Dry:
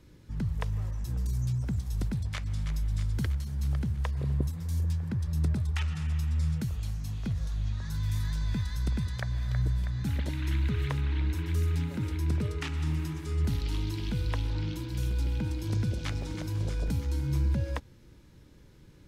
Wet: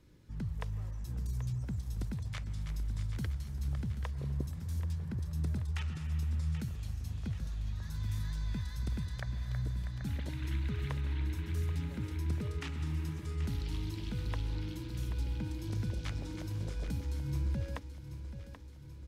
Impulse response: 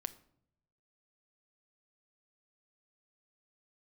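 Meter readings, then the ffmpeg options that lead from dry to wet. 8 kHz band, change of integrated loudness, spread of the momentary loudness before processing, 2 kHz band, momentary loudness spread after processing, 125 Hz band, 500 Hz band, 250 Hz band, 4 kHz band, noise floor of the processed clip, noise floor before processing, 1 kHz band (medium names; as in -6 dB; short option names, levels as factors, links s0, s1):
-6.0 dB, -6.0 dB, 4 LU, -6.0 dB, 5 LU, -6.0 dB, -6.0 dB, -6.0 dB, -6.0 dB, -46 dBFS, -55 dBFS, -6.0 dB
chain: -af "aecho=1:1:782|1564|2346|3128|3910|4692:0.282|0.155|0.0853|0.0469|0.0258|0.0142,volume=0.473"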